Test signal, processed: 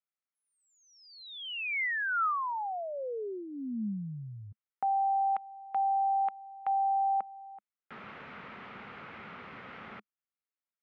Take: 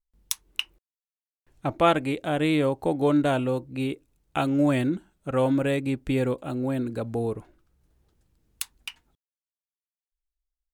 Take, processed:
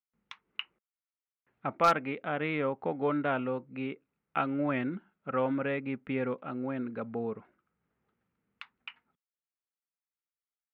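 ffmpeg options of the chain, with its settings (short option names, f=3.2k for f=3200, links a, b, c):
-af "highpass=190,equalizer=f=210:t=q:w=4:g=5,equalizer=f=320:t=q:w=4:g=-8,equalizer=f=620:t=q:w=4:g=-3,equalizer=f=1.3k:t=q:w=4:g=7,equalizer=f=2.1k:t=q:w=4:g=4,lowpass=f=2.7k:w=0.5412,lowpass=f=2.7k:w=1.3066,aeval=exprs='0.398*(abs(mod(val(0)/0.398+3,4)-2)-1)':c=same,volume=-5dB"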